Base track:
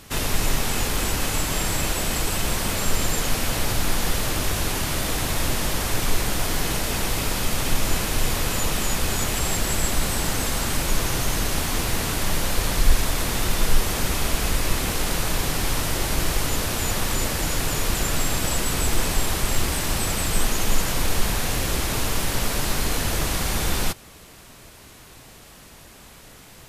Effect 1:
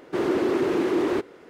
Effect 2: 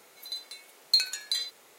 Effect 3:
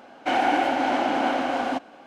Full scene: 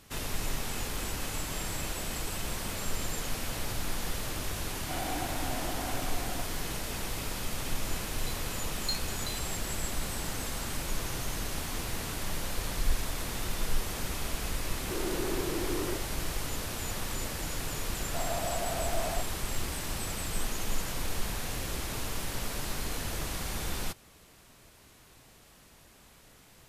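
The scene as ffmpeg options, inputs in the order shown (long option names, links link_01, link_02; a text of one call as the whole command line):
ffmpeg -i bed.wav -i cue0.wav -i cue1.wav -i cue2.wav -filter_complex "[1:a]asplit=2[link_01][link_02];[0:a]volume=-11dB[link_03];[3:a]aecho=1:1:3:0.39[link_04];[link_02]afreqshift=320[link_05];[link_04]atrim=end=2.06,asetpts=PTS-STARTPTS,volume=-16.5dB,afade=type=in:duration=0.004:curve=hsin,afade=type=out:start_time=2.056:duration=0.004:curve=hsin,adelay=4630[link_06];[2:a]atrim=end=1.78,asetpts=PTS-STARTPTS,volume=-11.5dB,afade=type=in:duration=0.004:curve=hsin,afade=type=out:start_time=1.776:duration=0.004:curve=hsin,adelay=7950[link_07];[link_01]atrim=end=1.49,asetpts=PTS-STARTPTS,volume=-12dB,afade=type=in:duration=0.004:curve=hsin,afade=type=out:start_time=1.486:duration=0.004:curve=hsin,adelay=14770[link_08];[link_05]atrim=end=1.49,asetpts=PTS-STARTPTS,volume=-13dB,afade=type=in:duration=0.004:curve=hsin,afade=type=out:start_time=1.486:duration=0.004:curve=hsin,adelay=18010[link_09];[link_03][link_06][link_07][link_08][link_09]amix=inputs=5:normalize=0" out.wav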